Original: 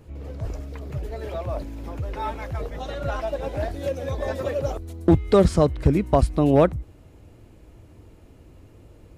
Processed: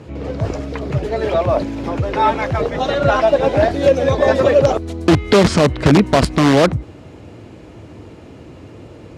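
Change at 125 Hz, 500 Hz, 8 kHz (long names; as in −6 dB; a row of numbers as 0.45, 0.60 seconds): +6.0, +9.0, +12.5 decibels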